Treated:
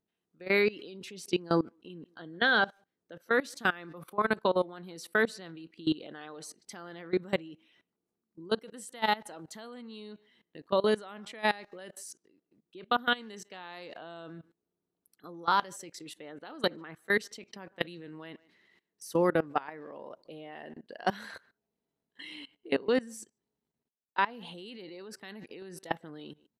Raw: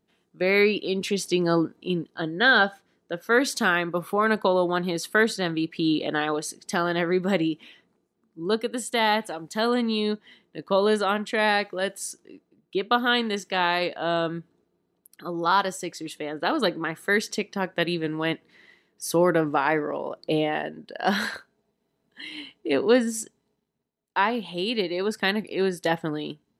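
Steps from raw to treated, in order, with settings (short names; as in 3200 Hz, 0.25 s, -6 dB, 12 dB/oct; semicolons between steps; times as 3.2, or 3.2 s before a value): speakerphone echo 0.15 s, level -26 dB; level quantiser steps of 21 dB; gain -3 dB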